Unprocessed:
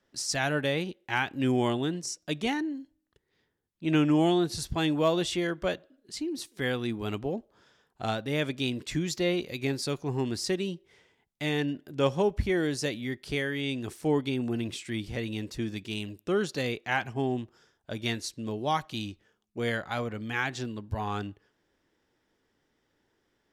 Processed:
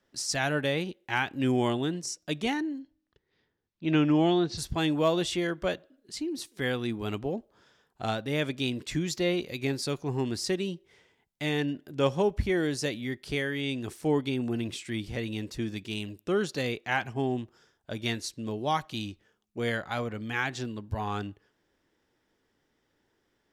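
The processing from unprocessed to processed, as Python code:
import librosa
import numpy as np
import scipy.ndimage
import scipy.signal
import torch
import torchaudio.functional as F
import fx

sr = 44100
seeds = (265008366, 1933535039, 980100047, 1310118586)

y = fx.lowpass(x, sr, hz=5700.0, slope=24, at=(2.79, 4.57), fade=0.02)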